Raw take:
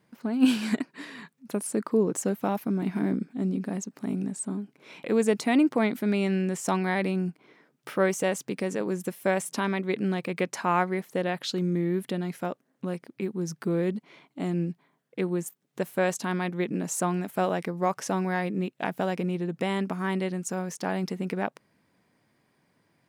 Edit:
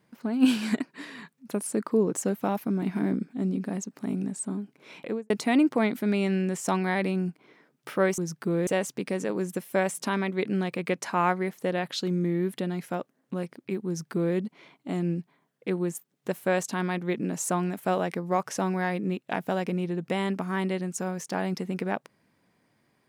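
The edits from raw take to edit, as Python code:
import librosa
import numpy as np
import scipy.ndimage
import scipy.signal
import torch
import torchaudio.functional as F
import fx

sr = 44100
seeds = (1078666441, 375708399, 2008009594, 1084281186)

y = fx.studio_fade_out(x, sr, start_s=4.98, length_s=0.32)
y = fx.edit(y, sr, fx.duplicate(start_s=13.38, length_s=0.49, to_s=8.18), tone=tone)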